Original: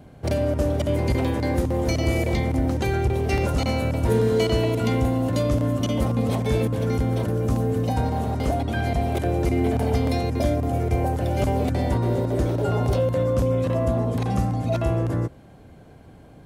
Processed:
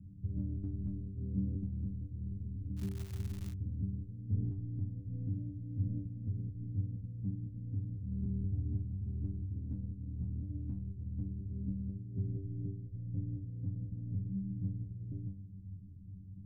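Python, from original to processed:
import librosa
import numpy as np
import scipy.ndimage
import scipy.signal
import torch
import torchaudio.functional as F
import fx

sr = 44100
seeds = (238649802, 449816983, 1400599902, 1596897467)

y = scipy.signal.sosfilt(scipy.signal.cheby2(4, 70, 850.0, 'lowpass', fs=sr, output='sos'), x)
y = fx.over_compress(y, sr, threshold_db=-29.0, ratio=-0.5)
y = fx.stiff_resonator(y, sr, f0_hz=96.0, decay_s=0.43, stiffness=0.002)
y = fx.dmg_crackle(y, sr, seeds[0], per_s=280.0, level_db=-47.0, at=(2.76, 3.52), fade=0.02)
y = y * librosa.db_to_amplitude(7.0)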